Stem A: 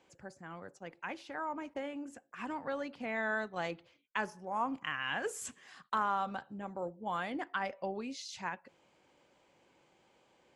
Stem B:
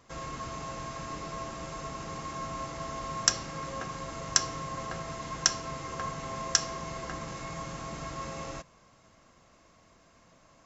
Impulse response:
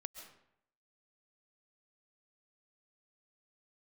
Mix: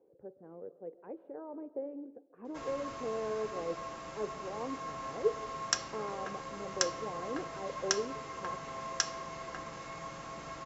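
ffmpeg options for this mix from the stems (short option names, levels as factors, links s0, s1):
-filter_complex "[0:a]lowpass=f=450:t=q:w=4.9,volume=0.596,asplit=2[s0][s1];[s1]volume=0.708[s2];[1:a]adelay=2450,volume=0.75[s3];[2:a]atrim=start_sample=2205[s4];[s2][s4]afir=irnorm=-1:irlink=0[s5];[s0][s3][s5]amix=inputs=3:normalize=0,lowpass=f=4000:p=1,lowshelf=f=230:g=-11"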